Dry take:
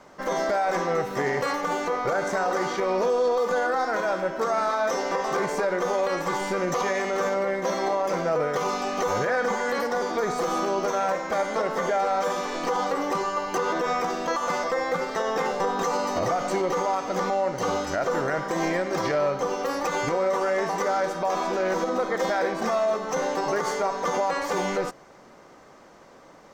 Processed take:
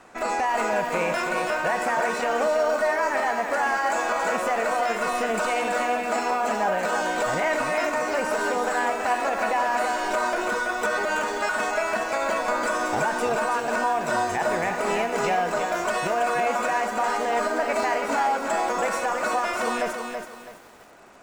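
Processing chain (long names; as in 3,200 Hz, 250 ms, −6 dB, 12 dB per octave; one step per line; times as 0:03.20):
speed change +25%
feedback echo at a low word length 329 ms, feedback 35%, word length 8 bits, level −5.5 dB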